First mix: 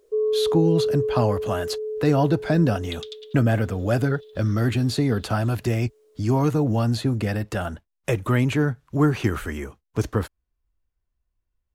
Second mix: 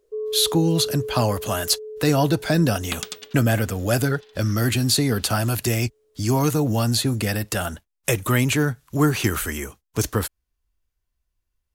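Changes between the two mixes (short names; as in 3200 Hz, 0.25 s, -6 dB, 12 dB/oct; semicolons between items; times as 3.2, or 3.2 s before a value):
speech: remove LPF 1400 Hz 6 dB/oct; first sound -6.0 dB; second sound: remove band-pass 3600 Hz, Q 5.3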